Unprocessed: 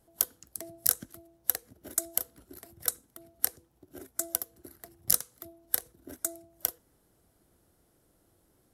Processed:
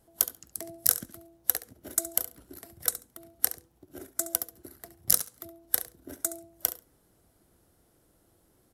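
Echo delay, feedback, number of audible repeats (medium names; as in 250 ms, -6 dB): 69 ms, 15%, 2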